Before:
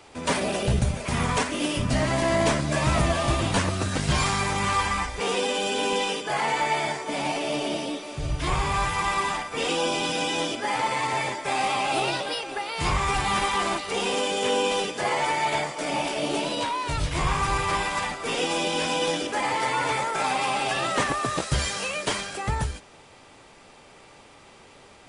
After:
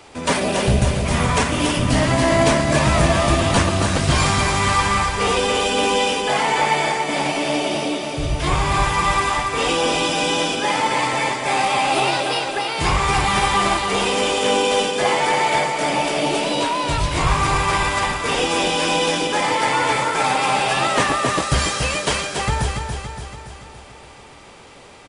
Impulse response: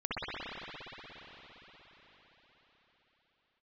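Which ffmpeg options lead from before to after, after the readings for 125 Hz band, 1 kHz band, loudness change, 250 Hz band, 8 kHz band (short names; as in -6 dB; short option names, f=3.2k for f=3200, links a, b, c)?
+7.0 dB, +7.0 dB, +7.0 dB, +7.0 dB, +7.0 dB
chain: -af "aecho=1:1:284|568|852|1136|1420|1704|1988:0.501|0.276|0.152|0.0834|0.0459|0.0252|0.0139,volume=5.5dB"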